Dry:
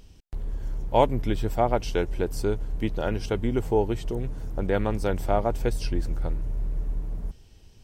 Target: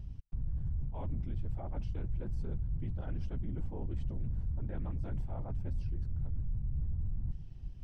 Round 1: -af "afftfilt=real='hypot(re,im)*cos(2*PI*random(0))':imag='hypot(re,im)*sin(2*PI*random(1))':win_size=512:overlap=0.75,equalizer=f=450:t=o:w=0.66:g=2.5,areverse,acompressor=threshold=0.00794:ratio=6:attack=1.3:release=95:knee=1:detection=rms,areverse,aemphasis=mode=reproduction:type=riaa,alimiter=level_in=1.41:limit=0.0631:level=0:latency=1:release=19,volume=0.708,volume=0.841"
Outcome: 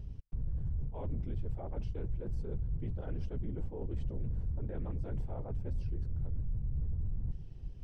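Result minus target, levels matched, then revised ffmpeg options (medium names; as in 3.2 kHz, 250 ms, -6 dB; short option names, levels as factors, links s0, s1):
500 Hz band +4.5 dB
-af "afftfilt=real='hypot(re,im)*cos(2*PI*random(0))':imag='hypot(re,im)*sin(2*PI*random(1))':win_size=512:overlap=0.75,equalizer=f=450:t=o:w=0.66:g=-7,areverse,acompressor=threshold=0.00794:ratio=6:attack=1.3:release=95:knee=1:detection=rms,areverse,aemphasis=mode=reproduction:type=riaa,alimiter=level_in=1.41:limit=0.0631:level=0:latency=1:release=19,volume=0.708,volume=0.841"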